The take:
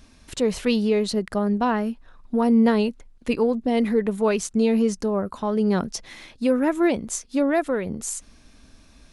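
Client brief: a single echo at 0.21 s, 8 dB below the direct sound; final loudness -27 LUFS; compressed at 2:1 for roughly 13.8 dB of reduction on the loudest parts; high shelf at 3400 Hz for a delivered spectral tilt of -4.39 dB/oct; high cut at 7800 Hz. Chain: LPF 7800 Hz; high shelf 3400 Hz +4 dB; compressor 2:1, threshold -41 dBFS; echo 0.21 s -8 dB; gain +7.5 dB

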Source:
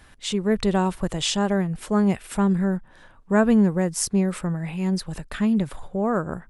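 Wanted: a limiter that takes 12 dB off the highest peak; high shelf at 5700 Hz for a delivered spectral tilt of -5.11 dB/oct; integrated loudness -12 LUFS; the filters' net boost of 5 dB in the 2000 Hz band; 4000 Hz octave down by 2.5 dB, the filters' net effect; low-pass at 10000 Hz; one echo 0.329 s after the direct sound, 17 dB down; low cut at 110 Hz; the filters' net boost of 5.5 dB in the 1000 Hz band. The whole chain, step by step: HPF 110 Hz; LPF 10000 Hz; bell 1000 Hz +6 dB; bell 2000 Hz +5 dB; bell 4000 Hz -9 dB; high shelf 5700 Hz +9 dB; limiter -16 dBFS; echo 0.329 s -17 dB; gain +13.5 dB

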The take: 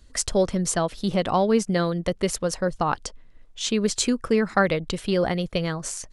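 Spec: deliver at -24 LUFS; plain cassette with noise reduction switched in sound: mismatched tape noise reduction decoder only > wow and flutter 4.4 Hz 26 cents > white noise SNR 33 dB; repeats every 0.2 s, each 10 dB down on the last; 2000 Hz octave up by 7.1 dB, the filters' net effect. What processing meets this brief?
bell 2000 Hz +9 dB; feedback echo 0.2 s, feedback 32%, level -10 dB; mismatched tape noise reduction decoder only; wow and flutter 4.4 Hz 26 cents; white noise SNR 33 dB; gain -1.5 dB

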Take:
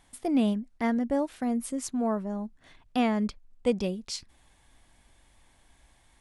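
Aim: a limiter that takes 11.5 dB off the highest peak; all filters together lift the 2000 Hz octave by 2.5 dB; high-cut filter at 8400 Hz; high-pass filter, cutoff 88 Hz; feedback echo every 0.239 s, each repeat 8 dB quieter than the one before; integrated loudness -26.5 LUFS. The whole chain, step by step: HPF 88 Hz; LPF 8400 Hz; bell 2000 Hz +3 dB; limiter -25.5 dBFS; feedback echo 0.239 s, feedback 40%, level -8 dB; gain +8 dB

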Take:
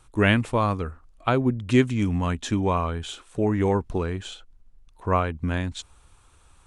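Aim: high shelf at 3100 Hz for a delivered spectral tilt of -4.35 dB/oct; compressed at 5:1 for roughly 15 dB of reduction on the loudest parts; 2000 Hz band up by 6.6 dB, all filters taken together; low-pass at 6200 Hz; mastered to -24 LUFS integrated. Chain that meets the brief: LPF 6200 Hz; bell 2000 Hz +7 dB; high shelf 3100 Hz +4 dB; compressor 5:1, threshold -29 dBFS; gain +9.5 dB

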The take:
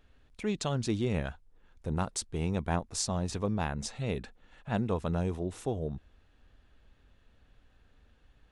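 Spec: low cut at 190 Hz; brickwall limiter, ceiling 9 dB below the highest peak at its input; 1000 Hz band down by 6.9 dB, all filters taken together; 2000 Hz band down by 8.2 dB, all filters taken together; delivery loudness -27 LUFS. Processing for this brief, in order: HPF 190 Hz; bell 1000 Hz -8 dB; bell 2000 Hz -8.5 dB; gain +11 dB; limiter -13.5 dBFS

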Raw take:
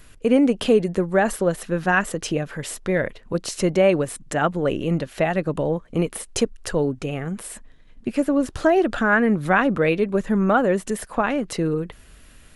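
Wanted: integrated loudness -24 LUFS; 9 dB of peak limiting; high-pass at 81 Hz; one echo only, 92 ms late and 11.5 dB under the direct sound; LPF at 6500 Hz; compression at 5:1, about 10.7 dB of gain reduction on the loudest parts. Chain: HPF 81 Hz; LPF 6500 Hz; compressor 5:1, threshold -25 dBFS; limiter -23 dBFS; echo 92 ms -11.5 dB; gain +8.5 dB

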